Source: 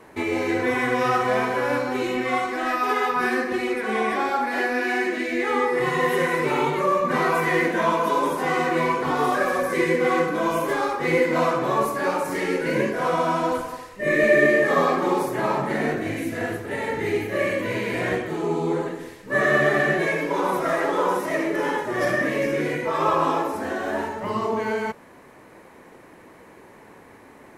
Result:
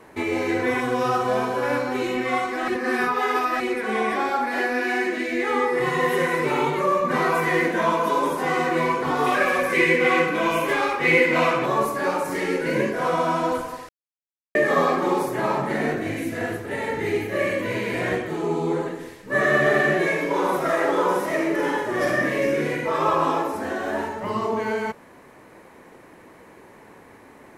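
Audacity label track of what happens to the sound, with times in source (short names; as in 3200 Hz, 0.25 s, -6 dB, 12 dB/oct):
0.800000	1.630000	bell 2000 Hz -11.5 dB 0.52 oct
2.680000	3.600000	reverse
9.260000	11.660000	bell 2500 Hz +11 dB 0.83 oct
13.890000	14.550000	mute
19.620000	22.990000	flutter echo walls apart 7.8 m, dies away in 0.35 s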